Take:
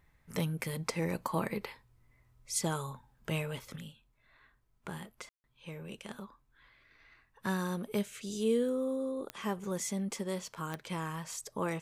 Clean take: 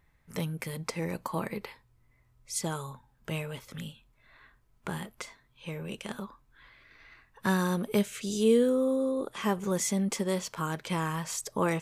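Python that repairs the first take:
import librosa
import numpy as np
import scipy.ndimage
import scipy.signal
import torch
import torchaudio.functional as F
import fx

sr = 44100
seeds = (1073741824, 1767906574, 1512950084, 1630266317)

y = fx.fix_declick_ar(x, sr, threshold=10.0)
y = fx.fix_ambience(y, sr, seeds[0], print_start_s=4.29, print_end_s=4.79, start_s=5.29, end_s=5.44)
y = fx.fix_level(y, sr, at_s=3.76, step_db=6.5)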